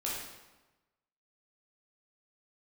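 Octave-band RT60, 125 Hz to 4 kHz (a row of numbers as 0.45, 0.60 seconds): 1.2, 1.1, 1.1, 1.1, 1.0, 0.85 seconds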